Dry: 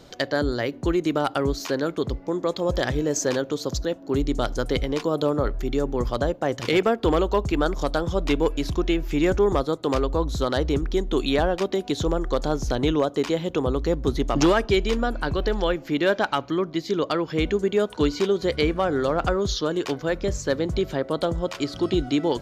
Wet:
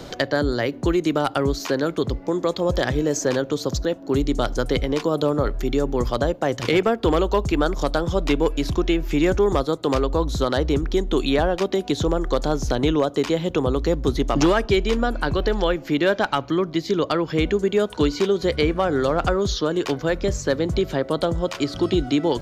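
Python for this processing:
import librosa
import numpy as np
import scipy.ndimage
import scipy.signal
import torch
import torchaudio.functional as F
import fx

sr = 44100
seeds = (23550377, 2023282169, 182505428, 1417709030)

y = fx.band_squash(x, sr, depth_pct=40)
y = F.gain(torch.from_numpy(y), 2.0).numpy()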